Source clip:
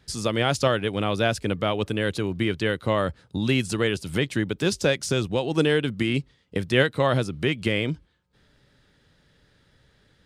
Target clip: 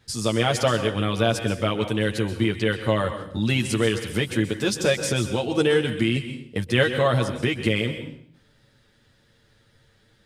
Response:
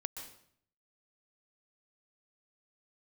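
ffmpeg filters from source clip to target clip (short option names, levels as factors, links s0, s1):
-filter_complex "[0:a]asplit=2[s0][s1];[s1]highshelf=f=6700:g=9[s2];[1:a]atrim=start_sample=2205,adelay=9[s3];[s2][s3]afir=irnorm=-1:irlink=0,volume=0.891[s4];[s0][s4]amix=inputs=2:normalize=0,volume=0.841"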